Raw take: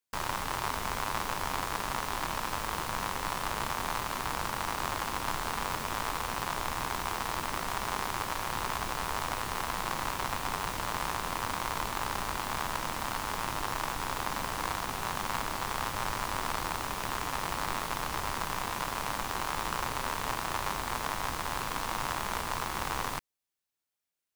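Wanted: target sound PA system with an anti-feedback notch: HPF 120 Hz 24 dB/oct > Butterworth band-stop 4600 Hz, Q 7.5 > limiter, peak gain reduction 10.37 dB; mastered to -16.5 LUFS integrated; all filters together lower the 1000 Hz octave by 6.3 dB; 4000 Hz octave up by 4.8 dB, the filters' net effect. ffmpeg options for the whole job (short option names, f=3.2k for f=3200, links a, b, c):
-af "highpass=f=120:w=0.5412,highpass=f=120:w=1.3066,asuperstop=centerf=4600:order=8:qfactor=7.5,equalizer=f=1k:t=o:g=-8,equalizer=f=4k:t=o:g=7.5,volume=23dB,alimiter=limit=-3dB:level=0:latency=1"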